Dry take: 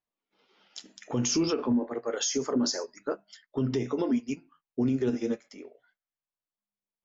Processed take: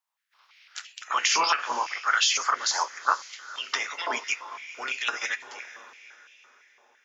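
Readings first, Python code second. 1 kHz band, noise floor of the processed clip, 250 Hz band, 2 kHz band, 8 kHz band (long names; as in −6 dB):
+15.5 dB, −66 dBFS, −23.5 dB, +18.0 dB, can't be measured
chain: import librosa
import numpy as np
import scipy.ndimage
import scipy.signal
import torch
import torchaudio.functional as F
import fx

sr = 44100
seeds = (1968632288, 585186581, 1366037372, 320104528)

y = fx.spec_clip(x, sr, under_db=18)
y = fx.echo_diffused(y, sr, ms=468, feedback_pct=46, wet_db=-16)
y = fx.filter_held_highpass(y, sr, hz=5.9, low_hz=940.0, high_hz=2600.0)
y = y * 10.0 ** (3.5 / 20.0)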